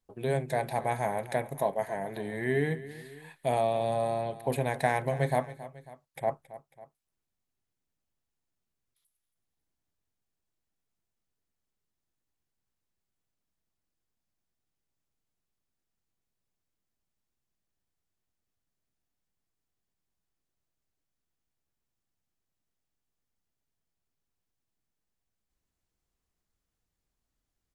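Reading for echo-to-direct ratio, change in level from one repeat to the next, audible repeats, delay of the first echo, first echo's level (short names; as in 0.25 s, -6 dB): -15.0 dB, -5.0 dB, 2, 0.273 s, -16.0 dB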